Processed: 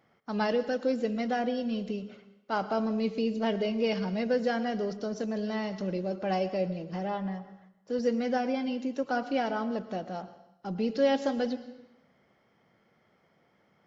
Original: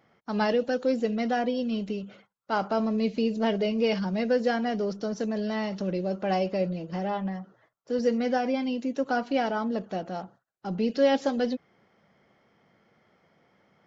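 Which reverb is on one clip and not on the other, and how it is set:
dense smooth reverb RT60 0.88 s, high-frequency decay 0.95×, pre-delay 95 ms, DRR 13.5 dB
level −3 dB

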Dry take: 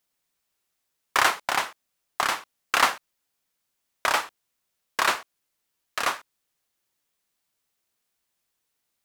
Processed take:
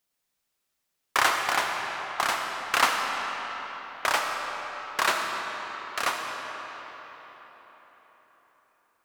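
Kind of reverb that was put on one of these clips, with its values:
comb and all-pass reverb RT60 4.7 s, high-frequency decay 0.7×, pre-delay 30 ms, DRR 2 dB
level −2 dB

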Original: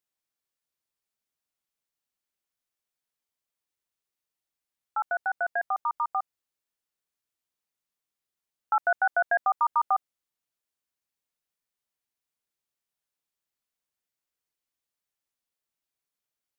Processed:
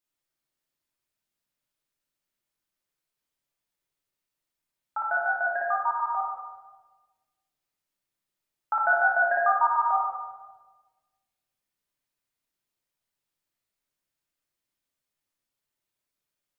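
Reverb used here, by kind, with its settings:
rectangular room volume 900 cubic metres, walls mixed, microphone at 2.7 metres
level −2.5 dB

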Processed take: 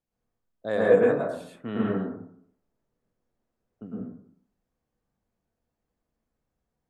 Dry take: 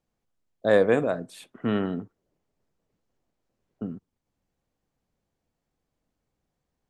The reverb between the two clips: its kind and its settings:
dense smooth reverb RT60 0.63 s, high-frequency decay 0.25×, pre-delay 95 ms, DRR −6 dB
level −9 dB

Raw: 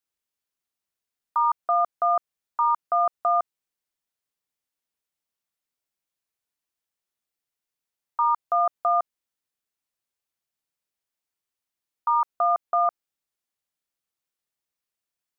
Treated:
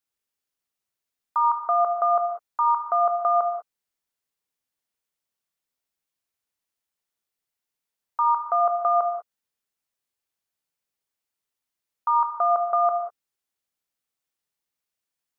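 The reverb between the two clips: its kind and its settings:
reverb whose tail is shaped and stops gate 220 ms flat, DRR 5 dB

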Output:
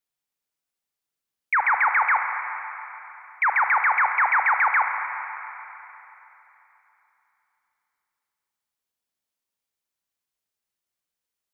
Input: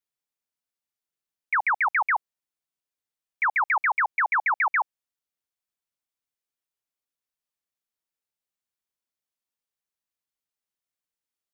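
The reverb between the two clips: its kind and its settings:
four-comb reverb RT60 3.3 s, combs from 33 ms, DRR 4.5 dB
level +2.5 dB

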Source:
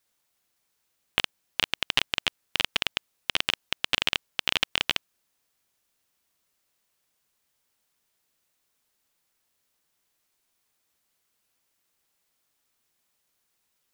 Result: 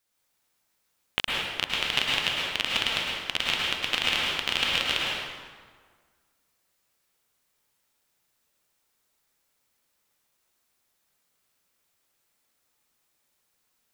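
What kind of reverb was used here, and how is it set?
dense smooth reverb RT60 1.7 s, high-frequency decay 0.65×, pre-delay 95 ms, DRR −4 dB
level −3 dB

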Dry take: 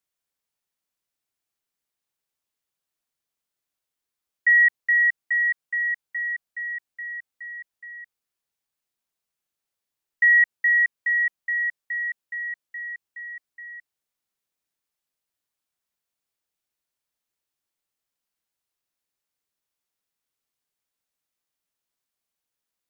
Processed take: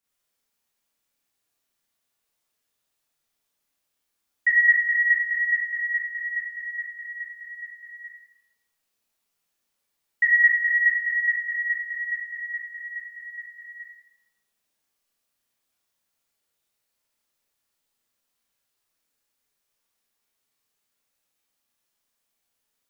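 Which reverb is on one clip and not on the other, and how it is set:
four-comb reverb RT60 0.81 s, combs from 27 ms, DRR −7.5 dB
level −1 dB

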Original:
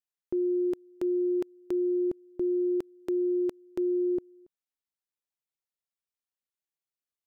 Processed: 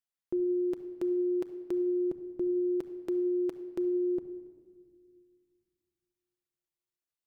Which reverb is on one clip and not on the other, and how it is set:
rectangular room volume 2,600 cubic metres, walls mixed, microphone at 0.71 metres
level −2.5 dB

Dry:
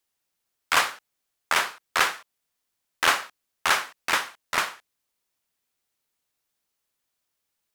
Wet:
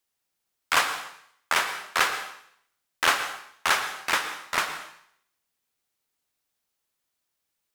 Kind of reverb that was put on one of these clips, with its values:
dense smooth reverb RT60 0.67 s, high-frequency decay 1×, pre-delay 100 ms, DRR 9.5 dB
level −1 dB

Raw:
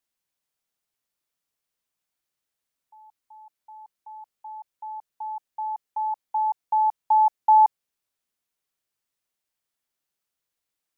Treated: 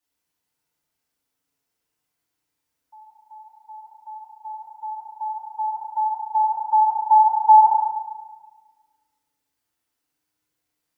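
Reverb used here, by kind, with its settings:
feedback delay network reverb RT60 1.4 s, low-frequency decay 1.5×, high-frequency decay 0.5×, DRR −8.5 dB
level −3 dB

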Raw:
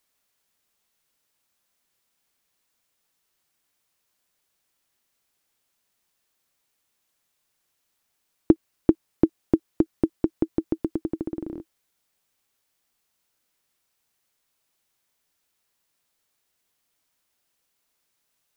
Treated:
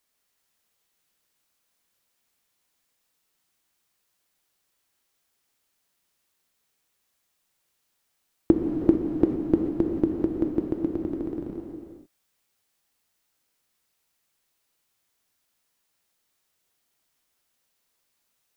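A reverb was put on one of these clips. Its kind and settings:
reverb whose tail is shaped and stops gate 470 ms flat, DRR 1.5 dB
level −2 dB

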